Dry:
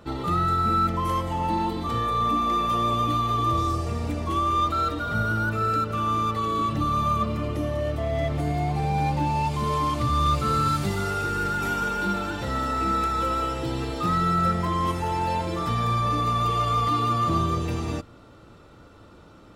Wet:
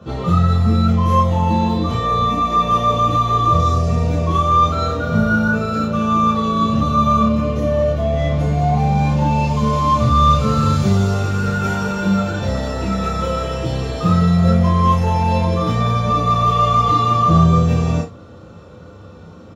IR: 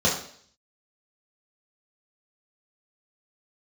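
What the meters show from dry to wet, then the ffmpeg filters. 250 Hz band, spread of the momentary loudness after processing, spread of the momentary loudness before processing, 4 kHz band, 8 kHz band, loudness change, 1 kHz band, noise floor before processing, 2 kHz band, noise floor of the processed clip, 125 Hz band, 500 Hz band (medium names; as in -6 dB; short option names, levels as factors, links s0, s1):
+11.0 dB, 6 LU, 5 LU, +5.5 dB, +5.0 dB, +8.5 dB, +6.5 dB, -49 dBFS, +5.0 dB, -39 dBFS, +11.0 dB, +9.0 dB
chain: -filter_complex "[0:a]asplit=2[s0][s1];[s1]adelay=32,volume=0.447[s2];[s0][s2]amix=inputs=2:normalize=0[s3];[1:a]atrim=start_sample=2205,atrim=end_sample=3087[s4];[s3][s4]afir=irnorm=-1:irlink=0,volume=0.355"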